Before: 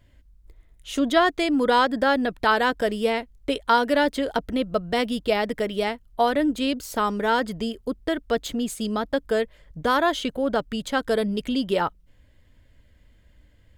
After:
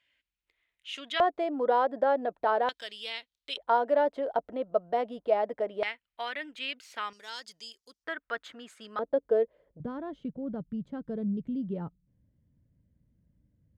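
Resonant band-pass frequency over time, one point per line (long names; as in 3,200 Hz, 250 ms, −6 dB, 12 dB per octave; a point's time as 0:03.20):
resonant band-pass, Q 2.3
2,600 Hz
from 0:01.20 650 Hz
from 0:02.69 3,600 Hz
from 0:03.57 680 Hz
from 0:05.83 2,300 Hz
from 0:07.13 5,600 Hz
from 0:08.04 1,500 Hz
from 0:08.99 490 Hz
from 0:09.80 160 Hz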